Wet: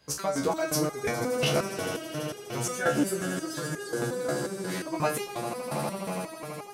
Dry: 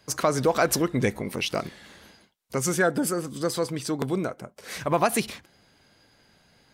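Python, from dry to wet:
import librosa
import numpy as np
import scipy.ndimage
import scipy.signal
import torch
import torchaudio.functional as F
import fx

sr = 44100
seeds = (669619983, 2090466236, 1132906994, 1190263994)

y = fx.echo_swell(x, sr, ms=82, loudest=8, wet_db=-14.0)
y = fx.resonator_held(y, sr, hz=5.6, low_hz=72.0, high_hz=410.0)
y = F.gain(torch.from_numpy(y), 6.5).numpy()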